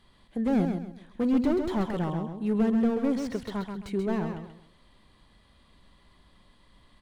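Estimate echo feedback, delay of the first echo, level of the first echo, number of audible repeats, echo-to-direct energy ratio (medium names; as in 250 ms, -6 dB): 30%, 133 ms, -6.0 dB, 3, -5.5 dB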